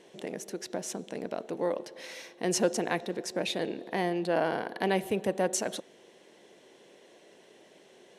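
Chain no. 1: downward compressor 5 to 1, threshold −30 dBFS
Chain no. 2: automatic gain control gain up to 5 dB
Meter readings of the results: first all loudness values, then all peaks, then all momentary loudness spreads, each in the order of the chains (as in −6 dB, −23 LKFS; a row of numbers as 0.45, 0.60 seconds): −36.5, −27.0 LKFS; −14.0, −7.5 dBFS; 22, 13 LU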